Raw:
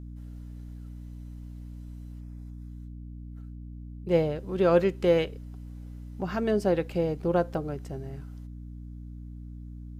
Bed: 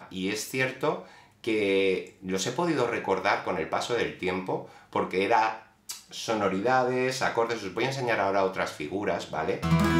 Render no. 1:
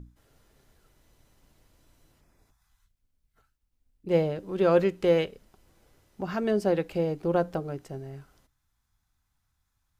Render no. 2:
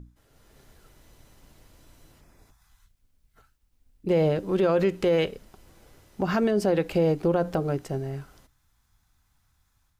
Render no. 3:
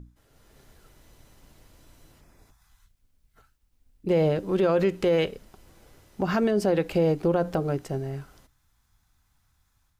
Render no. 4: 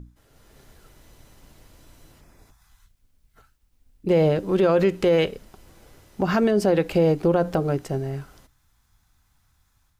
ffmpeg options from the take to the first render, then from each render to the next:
-af "bandreject=f=60:t=h:w=6,bandreject=f=120:t=h:w=6,bandreject=f=180:t=h:w=6,bandreject=f=240:t=h:w=6,bandreject=f=300:t=h:w=6"
-af "alimiter=limit=-23dB:level=0:latency=1:release=68,dynaudnorm=f=290:g=3:m=8dB"
-af anull
-af "volume=3.5dB"

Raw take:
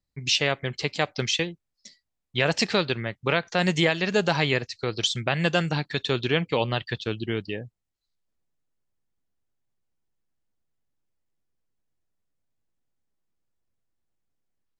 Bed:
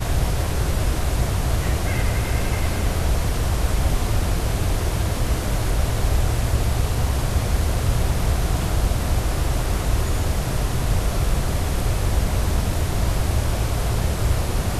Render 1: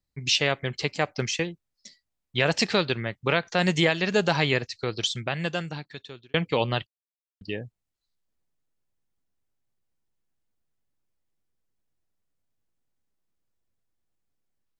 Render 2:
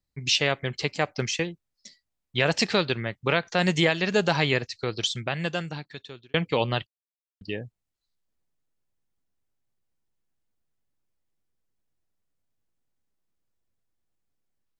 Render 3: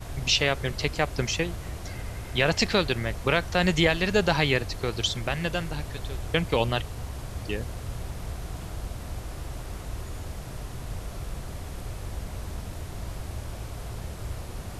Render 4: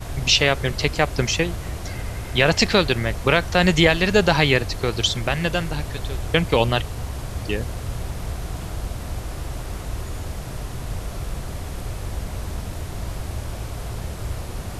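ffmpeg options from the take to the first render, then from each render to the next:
-filter_complex "[0:a]asettb=1/sr,asplit=3[a][b][c];[a]atrim=end=0.884[d];[b]atrim=start=0.88:end=1.45,asetpts=PTS-STARTPTS,afade=t=in:d=0.004:c=qsin,afade=t=out:st=0.566:d=0.004:c=qsin,equalizer=f=3.6k:t=o:w=0.54:g=-9.5[e];[c]atrim=start=1.446[f];[d][e]acrossfade=d=0.004:c1=hsin:c2=qsin[g];[g][f]acrossfade=d=0.004:c1=qsin:c2=hsin,asplit=4[h][i][j][k];[h]atrim=end=6.34,asetpts=PTS-STARTPTS,afade=t=out:st=4.7:d=1.64[l];[i]atrim=start=6.34:end=6.87,asetpts=PTS-STARTPTS,afade=t=in:d=0.004:c=hsin,afade=t=out:st=0.526:d=0.004:c=hsin[m];[j]atrim=start=6.87:end=7.41,asetpts=PTS-STARTPTS,volume=0[n];[k]atrim=start=7.41,asetpts=PTS-STARTPTS,afade=t=in:d=0.004:c=hsin[o];[l][m][n][o]concat=n=4:v=0:a=1"
-af anull
-filter_complex "[1:a]volume=-14.5dB[a];[0:a][a]amix=inputs=2:normalize=0"
-af "volume=6dB,alimiter=limit=-1dB:level=0:latency=1"

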